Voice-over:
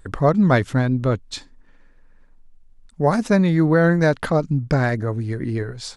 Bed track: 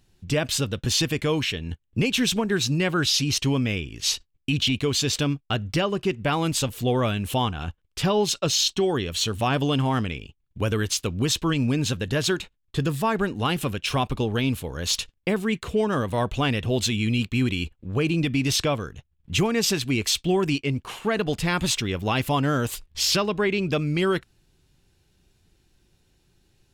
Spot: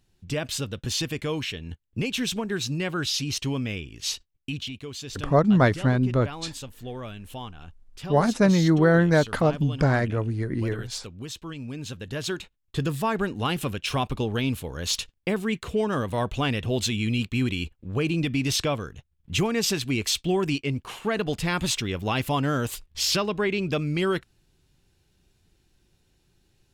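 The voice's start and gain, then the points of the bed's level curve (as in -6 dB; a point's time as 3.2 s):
5.10 s, -2.5 dB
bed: 4.42 s -5 dB
4.73 s -13.5 dB
11.6 s -13.5 dB
12.69 s -2 dB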